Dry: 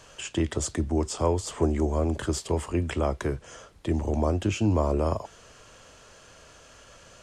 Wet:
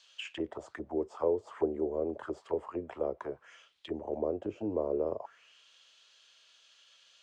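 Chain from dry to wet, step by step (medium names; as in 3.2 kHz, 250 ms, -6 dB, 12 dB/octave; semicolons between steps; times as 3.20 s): auto-wah 450–4000 Hz, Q 3.2, down, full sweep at -22 dBFS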